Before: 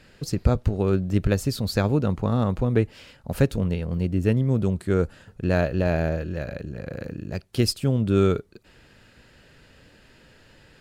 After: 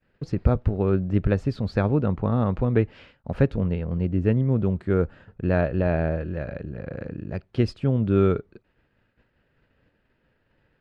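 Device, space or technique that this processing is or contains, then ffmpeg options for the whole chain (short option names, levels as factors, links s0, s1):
hearing-loss simulation: -filter_complex "[0:a]lowpass=2200,agate=range=0.0224:threshold=0.00631:ratio=3:detection=peak,asettb=1/sr,asplit=3[s0][s1][s2];[s0]atrim=end=2.454[s3];[s1]atrim=start=2.45:end=3.31,asetpts=PTS-STARTPTS,afade=t=in:d=0.004:c=qsin,afade=t=out:st=0.856:d=0.004:c=qsin,equalizer=f=4900:w=0.36:g=3.5[s4];[s2]atrim=start=3.306[s5];[s3][s4]acrossfade=d=0.004:c1=hsin:c2=qsin[s6];[s6][s5]acrossfade=d=0.004:c1=qsin:c2=hsin"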